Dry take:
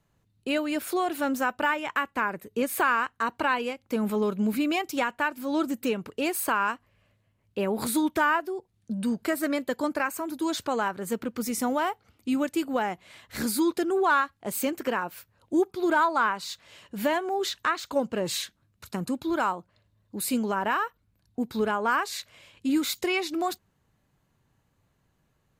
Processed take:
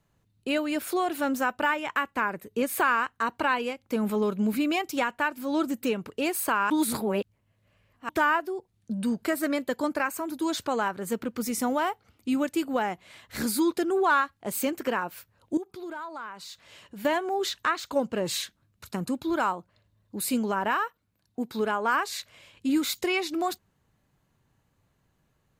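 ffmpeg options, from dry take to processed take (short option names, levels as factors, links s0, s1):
-filter_complex "[0:a]asettb=1/sr,asplit=3[s0][s1][s2];[s0]atrim=end=15.574[s3];[s1]atrim=start=15.57:end=17.05,asetpts=PTS-STARTPTS,afade=t=in:d=0.004:c=qsin,afade=t=out:st=1.476:d=0.004:c=qsin,acompressor=threshold=0.00794:ratio=2.5:attack=3.2:release=140:knee=1:detection=peak[s4];[s2]atrim=start=17.046[s5];[s3][s4]acrossfade=d=0.004:c1=hsin:c2=qsin[s6];[s6][s5]acrossfade=d=0.004:c1=qsin:c2=hsin,asettb=1/sr,asplit=3[s7][s8][s9];[s7]atrim=end=20.754[s10];[s8]atrim=start=20.75:end=21.94,asetpts=PTS-STARTPTS,afade=t=in:d=0.004:c=qsin,afade=t=out:st=1.186:d=0.004:c=qsin,highpass=f=200:p=1[s11];[s9]atrim=start=21.936[s12];[s10][s11]acrossfade=d=0.004:c1=hsin:c2=qsin[s13];[s13][s12]acrossfade=d=0.004:c1=qsin:c2=hsin,asplit=3[s14][s15][s16];[s14]atrim=end=6.702[s17];[s15]atrim=start=6.698:end=8.092,asetpts=PTS-STARTPTS,areverse[s18];[s16]atrim=start=8.088[s19];[s17][s18]acrossfade=d=0.004:c1=hsin:c2=hsin[s20];[s20][s19]acrossfade=d=0.004:c1=hsin:c2=hsin"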